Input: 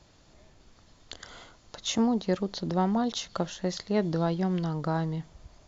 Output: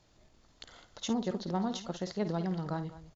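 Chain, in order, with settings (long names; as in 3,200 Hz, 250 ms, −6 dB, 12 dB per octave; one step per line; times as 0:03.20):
tempo change 1.8×
multi-tap delay 53/205 ms −11.5/−16 dB
level −6 dB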